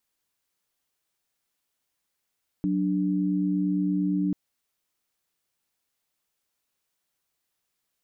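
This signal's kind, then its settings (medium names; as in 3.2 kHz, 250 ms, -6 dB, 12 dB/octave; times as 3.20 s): chord F#3/D4 sine, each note -25 dBFS 1.69 s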